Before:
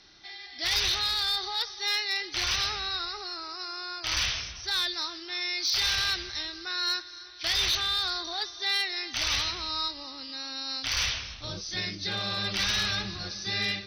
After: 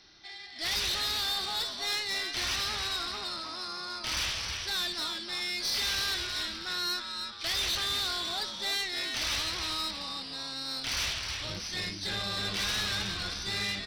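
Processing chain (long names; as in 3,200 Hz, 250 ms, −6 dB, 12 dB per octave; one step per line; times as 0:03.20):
echo with shifted repeats 315 ms, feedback 39%, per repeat −130 Hz, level −7 dB
tube saturation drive 26 dB, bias 0.45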